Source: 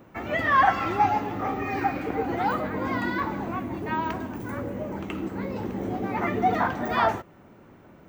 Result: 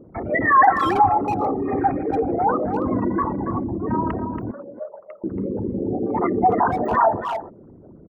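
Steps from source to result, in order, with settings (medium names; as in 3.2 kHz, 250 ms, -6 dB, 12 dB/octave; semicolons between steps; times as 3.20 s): resonances exaggerated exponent 3; 4.51–5.24 s: elliptic band-pass 580–1800 Hz, stop band 40 dB; speakerphone echo 280 ms, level -8 dB; trim +5.5 dB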